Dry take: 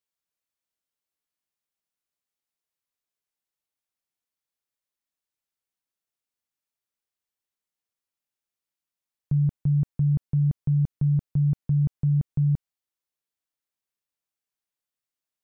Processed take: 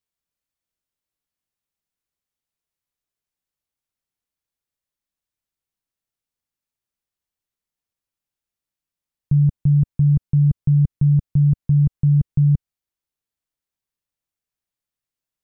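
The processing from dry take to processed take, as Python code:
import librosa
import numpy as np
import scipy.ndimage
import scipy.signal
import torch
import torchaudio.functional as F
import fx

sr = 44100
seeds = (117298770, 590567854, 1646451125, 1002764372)

y = fx.low_shelf(x, sr, hz=180.0, db=11.0)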